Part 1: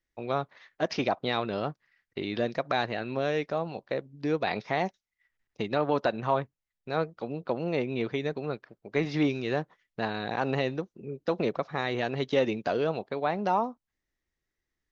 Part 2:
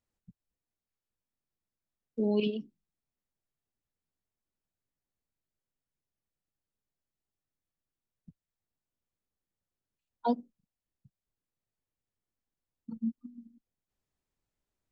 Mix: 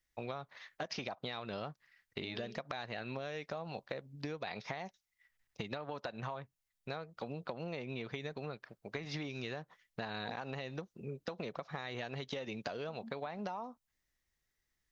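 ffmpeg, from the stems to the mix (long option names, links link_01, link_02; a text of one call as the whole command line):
ffmpeg -i stem1.wav -i stem2.wav -filter_complex "[0:a]equalizer=frequency=330:width=1.4:gain=-6.5,acompressor=threshold=-32dB:ratio=6,volume=0dB[link_01];[1:a]volume=-17dB[link_02];[link_01][link_02]amix=inputs=2:normalize=0,highshelf=frequency=3900:gain=6,acompressor=threshold=-37dB:ratio=6" out.wav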